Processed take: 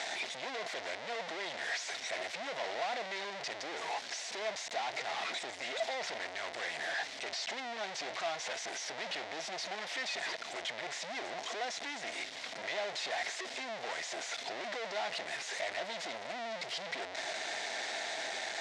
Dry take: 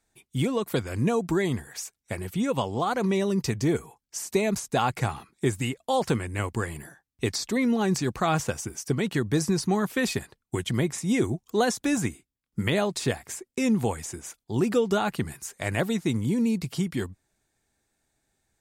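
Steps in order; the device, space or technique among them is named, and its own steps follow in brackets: home computer beeper (one-bit comparator; cabinet simulation 600–5800 Hz, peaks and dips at 670 Hz +10 dB, 1.2 kHz -5 dB, 2 kHz +7 dB, 3.7 kHz +4 dB); trim -9 dB

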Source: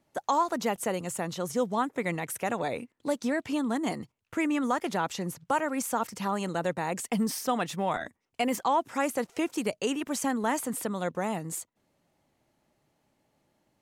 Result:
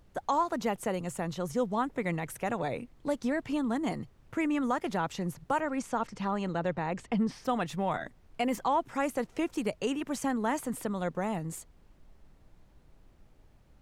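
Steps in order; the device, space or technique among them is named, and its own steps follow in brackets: car interior (peaking EQ 130 Hz +6.5 dB 0.77 oct; treble shelf 4.2 kHz -6.5 dB; brown noise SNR 24 dB); 5.60–7.44 s: low-pass 7.5 kHz -> 3.8 kHz 12 dB/octave; trim -2 dB

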